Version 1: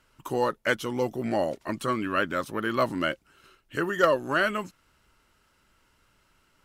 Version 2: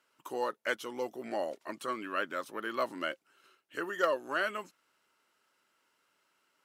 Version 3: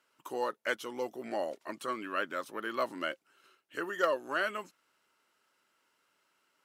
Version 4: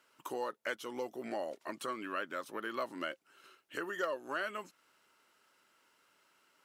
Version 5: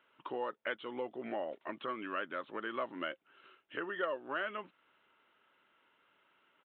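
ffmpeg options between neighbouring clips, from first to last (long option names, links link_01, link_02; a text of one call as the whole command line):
ffmpeg -i in.wav -af "highpass=340,volume=-7dB" out.wav
ffmpeg -i in.wav -af anull out.wav
ffmpeg -i in.wav -af "acompressor=threshold=-45dB:ratio=2,volume=4dB" out.wav
ffmpeg -i in.wav -af "aresample=8000,aresample=44100" out.wav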